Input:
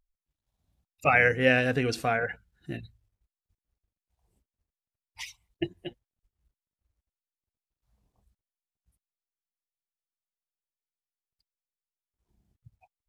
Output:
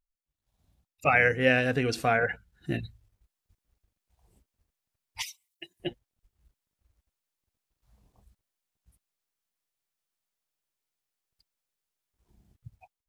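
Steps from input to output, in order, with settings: level rider gain up to 15.5 dB; 5.22–5.80 s: differentiator; trim -7.5 dB

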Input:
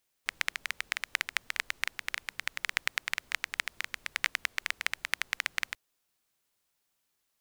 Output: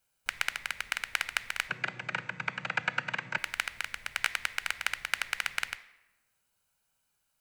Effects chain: 1.67–3.38 s: vocoder on a held chord major triad, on B2; reverberation RT60 1.1 s, pre-delay 4 ms, DRR 13.5 dB; trim -4 dB

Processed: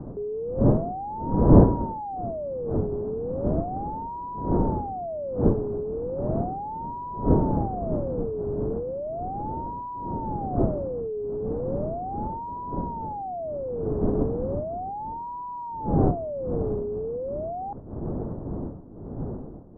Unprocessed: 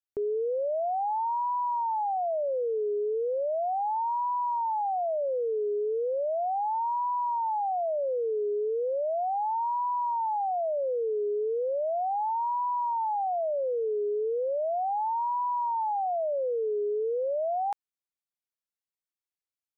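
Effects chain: wind noise 330 Hz -26 dBFS; Bessel low-pass 750 Hz, order 6; trim -1 dB

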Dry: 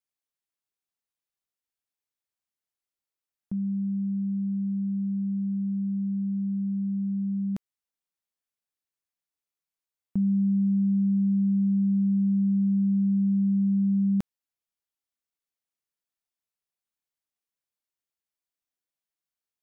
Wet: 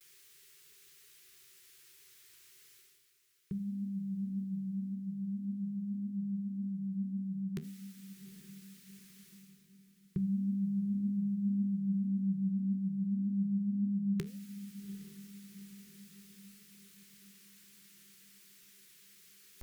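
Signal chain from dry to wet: FFT filter 100 Hz 0 dB, 160 Hz +8 dB, 240 Hz -18 dB, 390 Hz +12 dB, 620 Hz -22 dB, 1.1 kHz -2 dB, 1.9 kHz +8 dB; reverse; upward compressor, threshold -32 dBFS; reverse; vibrato 0.38 Hz 34 cents; flange 1.8 Hz, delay 7.7 ms, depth 9.5 ms, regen +77%; echo that smears into a reverb 813 ms, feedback 51%, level -14 dB

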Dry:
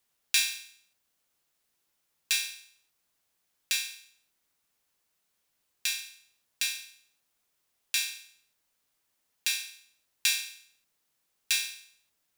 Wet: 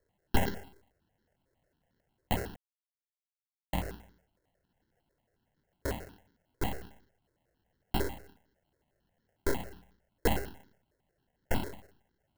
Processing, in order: 10.49–11.73 s: band-stop 4.2 kHz, Q 6.7; sample-rate reducer 1.2 kHz, jitter 0%; 2.56–3.73 s: mute; stepped phaser 11 Hz 770–2500 Hz; trim +2.5 dB

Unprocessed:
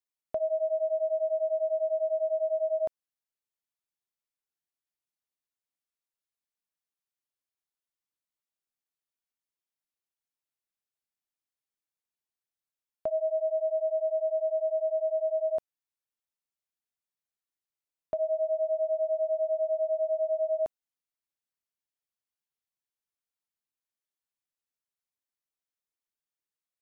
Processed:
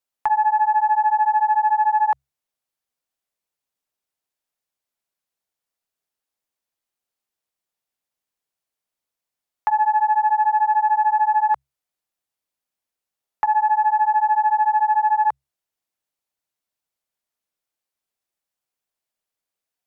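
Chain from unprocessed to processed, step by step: hum notches 50/100 Hz; speed mistake 33 rpm record played at 45 rpm; peaking EQ 690 Hz +4.5 dB 0.9 oct; loudspeaker Doppler distortion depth 0.39 ms; trim +7.5 dB

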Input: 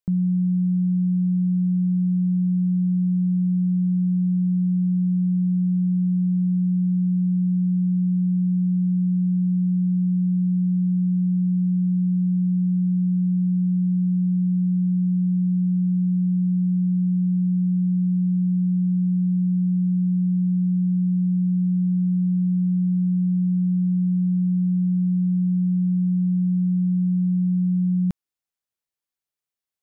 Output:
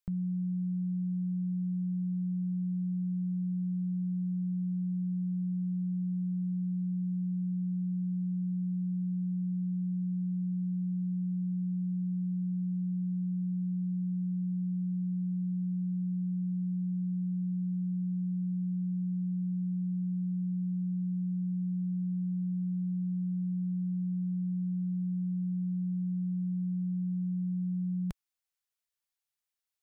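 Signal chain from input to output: peaking EQ 250 Hz -13.5 dB 2.5 oct

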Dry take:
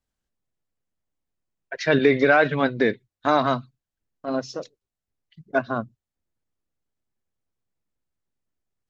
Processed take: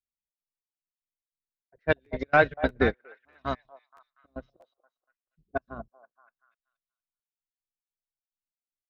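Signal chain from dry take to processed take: octave divider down 2 oct, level -2 dB; level-controlled noise filter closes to 370 Hz, open at -14.5 dBFS; trance gate "xxx.xx..x.xx." 148 bpm -24 dB; on a send: repeats whose band climbs or falls 238 ms, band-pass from 690 Hz, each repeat 0.7 oct, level -5 dB; on the sum: crackling interface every 0.64 s, samples 512, repeat, from 0.76 s; upward expansion 2.5:1, over -30 dBFS

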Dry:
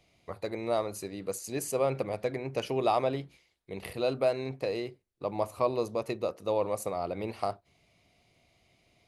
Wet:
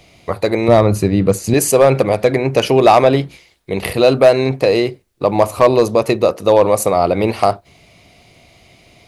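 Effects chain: 0.68–1.54 s: tone controls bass +13 dB, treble -8 dB; hard clipper -20 dBFS, distortion -21 dB; loudness maximiser +20.5 dB; trim -1 dB

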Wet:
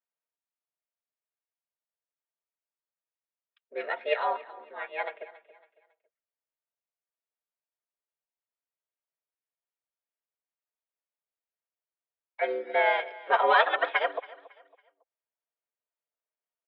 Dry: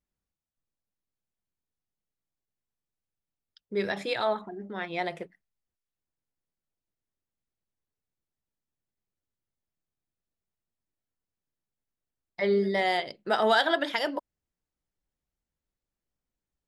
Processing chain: on a send: feedback delay 277 ms, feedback 34%, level -14 dB; on the sum: mistuned SSB +110 Hz 420–3000 Hz; comb 3.2 ms, depth 59%; harmony voices -5 st -3 dB; upward expansion 1.5:1, over -36 dBFS; trim +1.5 dB

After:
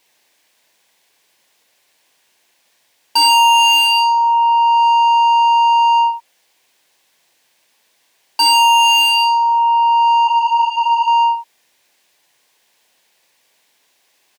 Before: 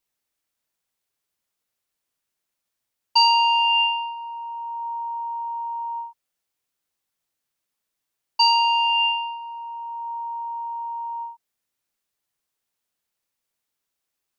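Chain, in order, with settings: peaking EQ 1.3 kHz -13 dB 0.27 oct; overdrive pedal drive 29 dB, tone 3.2 kHz, clips at -10 dBFS; on a send: delay 70 ms -9 dB; 10.27–11.08 s: on the sum: three-phase chorus; trim +5 dB

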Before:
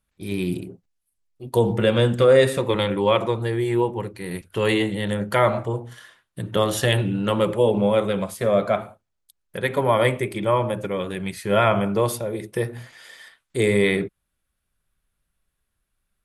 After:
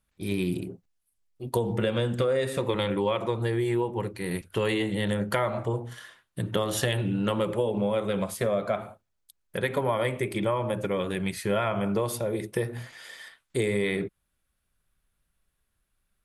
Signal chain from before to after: compression 6:1, threshold -23 dBFS, peak gain reduction 12 dB

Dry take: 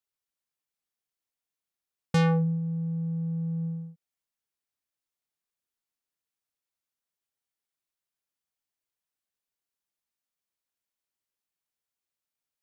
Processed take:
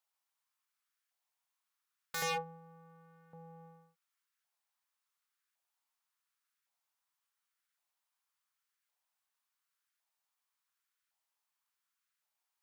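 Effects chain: LFO high-pass saw up 0.9 Hz 750–1500 Hz; wavefolder -30.5 dBFS; trim +1.5 dB

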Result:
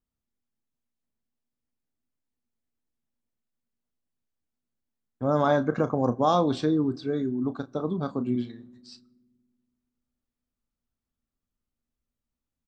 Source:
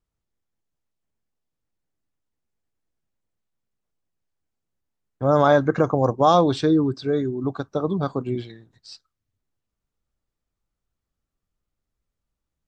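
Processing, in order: peaking EQ 240 Hz +13 dB 0.25 oct; doubling 33 ms -12 dB; on a send: reverberation RT60 1.5 s, pre-delay 5 ms, DRR 23 dB; on the sum: trim -6.5 dB

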